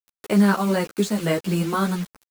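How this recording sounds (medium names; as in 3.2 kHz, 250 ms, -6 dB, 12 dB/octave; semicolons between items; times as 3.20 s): a quantiser's noise floor 6-bit, dither none; a shimmering, thickened sound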